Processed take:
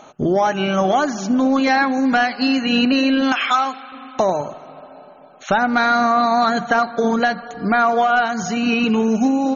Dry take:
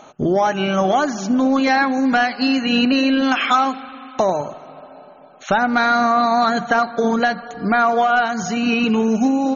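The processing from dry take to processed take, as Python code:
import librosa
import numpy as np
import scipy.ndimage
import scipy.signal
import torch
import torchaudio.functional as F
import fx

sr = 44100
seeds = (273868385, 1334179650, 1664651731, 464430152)

y = fx.highpass(x, sr, hz=660.0, slope=6, at=(3.32, 3.92))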